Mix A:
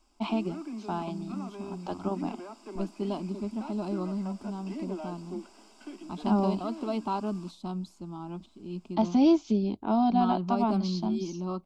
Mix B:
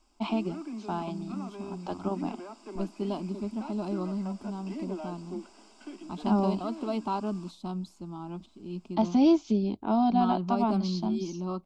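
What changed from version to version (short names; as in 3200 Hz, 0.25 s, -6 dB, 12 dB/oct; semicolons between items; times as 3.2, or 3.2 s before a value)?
background: add steep low-pass 9700 Hz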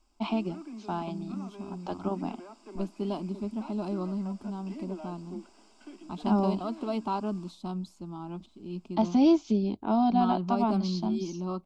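background -4.0 dB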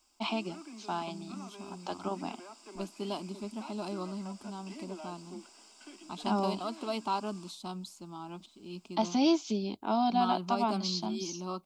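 master: add tilt +3 dB/oct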